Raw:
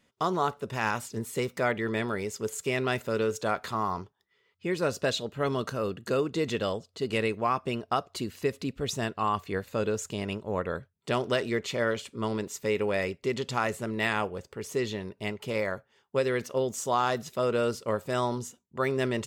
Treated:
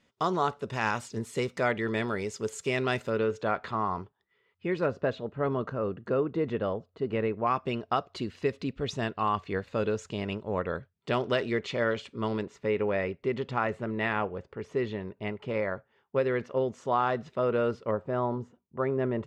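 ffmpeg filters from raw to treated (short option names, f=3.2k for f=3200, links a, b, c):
-af "asetnsamples=n=441:p=0,asendcmd='3.1 lowpass f 2800;4.86 lowpass f 1500;7.47 lowpass f 4000;12.43 lowpass f 2200;17.91 lowpass f 1200',lowpass=6.9k"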